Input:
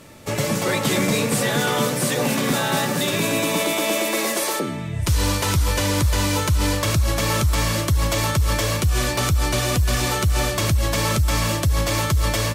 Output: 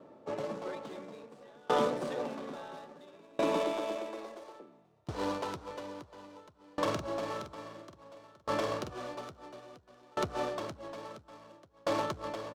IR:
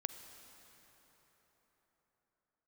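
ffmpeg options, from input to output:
-filter_complex "[0:a]highpass=340,equalizer=f=2.1k:t=o:w=1:g=-10.5,adynamicsmooth=sensitivity=1.5:basefreq=1.2k,asettb=1/sr,asplit=3[a][b][c];[a]atrim=end=6.564[d];[b]atrim=start=6.56:end=9.15,asetpts=PTS-STARTPTS,afade=t=in:d=0.004:c=qsin,afade=t=out:st=2.586:d=0.004:c=qsin,asplit=2[e][f];[f]adelay=47,volume=-5.5dB[g];[e][g]amix=inputs=2:normalize=0,atrim=end_sample=114219[h];[c]atrim=start=9.146[i];[d][h]acrossfade=d=0.004:c1=hsin:c2=qsin[j];[j][i]acrossfade=d=0.004:c1=qsin:c2=hsin,asplit=7[k][l][m][n][o][p][q];[l]adelay=483,afreqshift=36,volume=-19dB[r];[m]adelay=966,afreqshift=72,volume=-23.2dB[s];[n]adelay=1449,afreqshift=108,volume=-27.3dB[t];[o]adelay=1932,afreqshift=144,volume=-31.5dB[u];[p]adelay=2415,afreqshift=180,volume=-35.6dB[v];[q]adelay=2898,afreqshift=216,volume=-39.8dB[w];[k][r][s][t][u][v][w]amix=inputs=7:normalize=0,aeval=exprs='val(0)*pow(10,-31*if(lt(mod(0.59*n/s,1),2*abs(0.59)/1000),1-mod(0.59*n/s,1)/(2*abs(0.59)/1000),(mod(0.59*n/s,1)-2*abs(0.59)/1000)/(1-2*abs(0.59)/1000))/20)':c=same,volume=-1dB"

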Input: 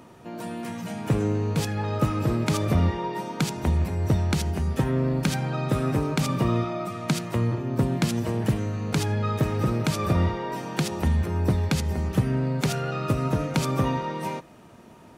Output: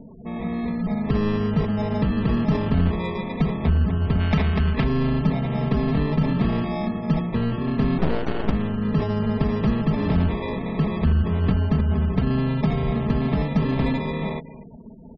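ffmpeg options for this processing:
-filter_complex "[0:a]acrusher=samples=30:mix=1:aa=0.000001,asoftclip=type=tanh:threshold=-22.5dB,lowpass=4.7k,lowshelf=f=250:g=11,aecho=1:1:4.6:0.69,asplit=3[a][b][c];[a]afade=t=out:st=4.19:d=0.02[d];[b]equalizer=f=2.2k:t=o:w=2:g=9,afade=t=in:st=4.19:d=0.02,afade=t=out:st=4.83:d=0.02[e];[c]afade=t=in:st=4.83:d=0.02[f];[d][e][f]amix=inputs=3:normalize=0,asettb=1/sr,asplit=3[g][h][i];[g]atrim=end=7.984[j];[h]atrim=start=7.98:end=8.52,asetpts=PTS-STARTPTS,afade=t=in:d=0.004:c=qsin,afade=t=out:st=0.536:d=0.004:c=qsin,aeval=exprs='0.355*(cos(1*acos(clip(val(0)/0.355,-1,1)))-cos(1*PI/2))+0.0794*(cos(3*acos(clip(val(0)/0.355,-1,1)))-cos(3*PI/2))+0.0631*(cos(4*acos(clip(val(0)/0.355,-1,1)))-cos(4*PI/2))+0.00794*(cos(7*acos(clip(val(0)/0.355,-1,1)))-cos(7*PI/2))+0.0355*(cos(8*acos(clip(val(0)/0.355,-1,1)))-cos(8*PI/2))':c=same[k];[i]atrim=start=8.516[l];[j][k]acrossfade=d=0.004:c1=hsin:c2=qsin[m];[m][l]acrossfade=d=0.004:c1=qsin:c2=hsin,aecho=1:1:251|502|753:0.141|0.0551|0.0215,afftfilt=real='re*gte(hypot(re,im),0.0126)':imag='im*gte(hypot(re,im),0.0126)':win_size=1024:overlap=0.75"

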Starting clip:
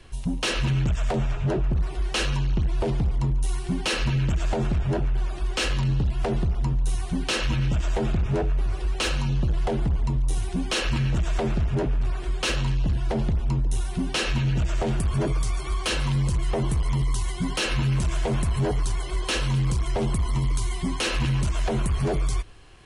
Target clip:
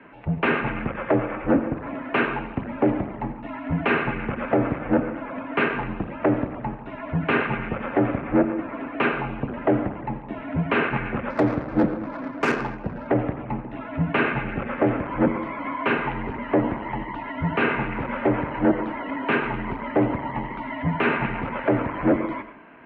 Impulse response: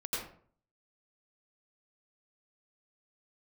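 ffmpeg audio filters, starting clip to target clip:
-filter_complex "[0:a]highpass=f=260:t=q:w=0.5412,highpass=f=260:t=q:w=1.307,lowpass=f=2.3k:t=q:w=0.5176,lowpass=f=2.3k:t=q:w=0.7071,lowpass=f=2.3k:t=q:w=1.932,afreqshift=-98,asplit=2[a][b];[1:a]atrim=start_sample=2205[c];[b][c]afir=irnorm=-1:irlink=0,volume=-13dB[d];[a][d]amix=inputs=2:normalize=0,asettb=1/sr,asplit=3[e][f][g];[e]atrim=end=11.304[h];[f]atrim=start=11.3:end=13.08,asetpts=PTS-STARTPTS,afade=t=in:d=0.004:c=qsin,afade=t=out:st=1.776:d=0.004:c=qsin,adynamicsmooth=sensitivity=4:basefreq=1.6k[i];[g]atrim=start=13.076[j];[h][i]acrossfade=d=0.004:c1=hsin:c2=qsin[k];[k][j]acrossfade=d=0.004:c1=qsin:c2=hsin,volume=7.5dB"

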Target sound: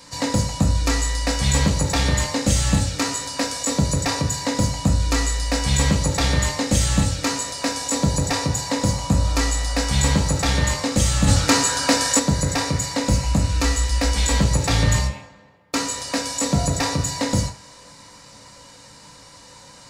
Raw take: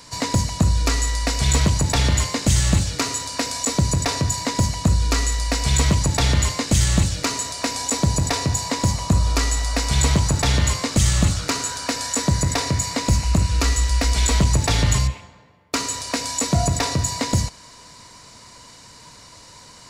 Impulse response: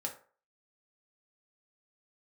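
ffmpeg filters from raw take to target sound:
-filter_complex "[1:a]atrim=start_sample=2205[a];[0:a][a]afir=irnorm=-1:irlink=0,asplit=3[b][c][d];[b]afade=t=out:st=11.27:d=0.02[e];[c]acontrast=69,afade=t=in:st=11.27:d=0.02,afade=t=out:st=12.18:d=0.02[f];[d]afade=t=in:st=12.18:d=0.02[g];[e][f][g]amix=inputs=3:normalize=0"

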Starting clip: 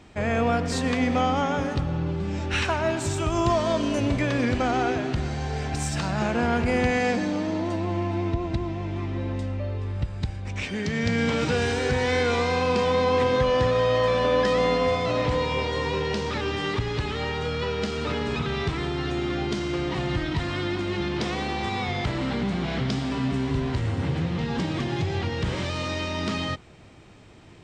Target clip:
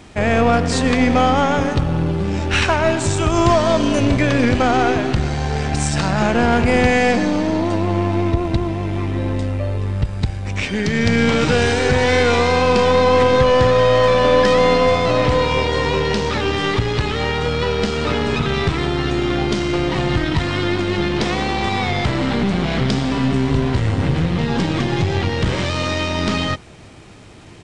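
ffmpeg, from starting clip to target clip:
-af "acrusher=bits=8:mix=0:aa=0.5,aeval=exprs='0.316*(cos(1*acos(clip(val(0)/0.316,-1,1)))-cos(1*PI/2))+0.0158*(cos(8*acos(clip(val(0)/0.316,-1,1)))-cos(8*PI/2))':c=same,aresample=22050,aresample=44100,volume=8dB"

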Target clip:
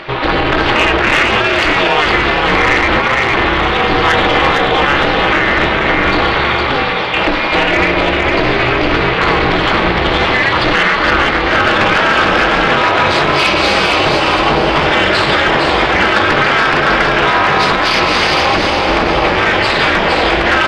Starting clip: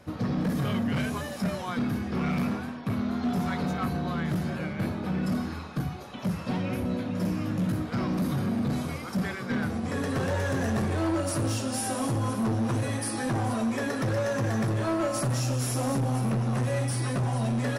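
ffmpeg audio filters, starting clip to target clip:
-filter_complex "[0:a]highpass=410,afftfilt=real='re*lt(hypot(re,im),0.158)':imag='im*lt(hypot(re,im),0.158)':win_size=1024:overlap=0.75,lowpass=f=4.8k:w=0.5412,lowpass=f=4.8k:w=1.3066,equalizer=f=2.8k:w=0.74:g=11,aecho=1:1:5.4:0.37,acompressor=mode=upward:threshold=-53dB:ratio=2.5,asetrate=37926,aresample=44100,aeval=exprs='val(0)*sin(2*PI*140*n/s)':c=same,asoftclip=type=tanh:threshold=-25dB,asplit=2[a][b];[b]asplit=5[c][d][e][f][g];[c]adelay=460,afreqshift=50,volume=-4dB[h];[d]adelay=920,afreqshift=100,volume=-12.9dB[i];[e]adelay=1380,afreqshift=150,volume=-21.7dB[j];[f]adelay=1840,afreqshift=200,volume=-30.6dB[k];[g]adelay=2300,afreqshift=250,volume=-39.5dB[l];[h][i][j][k][l]amix=inputs=5:normalize=0[m];[a][m]amix=inputs=2:normalize=0,alimiter=level_in=25.5dB:limit=-1dB:release=50:level=0:latency=1,volume=-1dB"

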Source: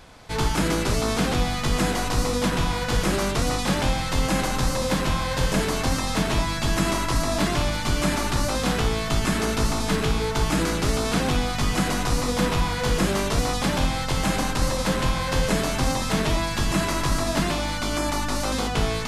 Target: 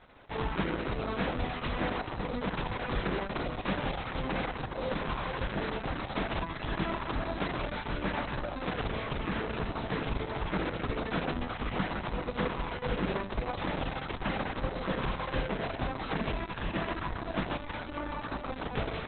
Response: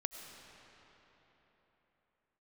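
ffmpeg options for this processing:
-af "bass=f=250:g=-4,treble=f=4k:g=-14,volume=-6.5dB" -ar 48000 -c:a libopus -b:a 6k

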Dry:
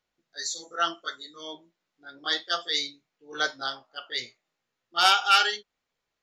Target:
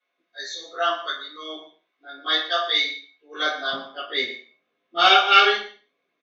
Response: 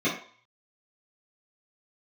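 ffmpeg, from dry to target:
-filter_complex "[0:a]asetnsamples=n=441:p=0,asendcmd='3.73 highpass f 300',highpass=700,lowpass=4k,aecho=1:1:117:0.168[a];[1:a]atrim=start_sample=2205,afade=t=out:st=0.3:d=0.01,atrim=end_sample=13671[b];[a][b]afir=irnorm=-1:irlink=0,volume=-3.5dB"

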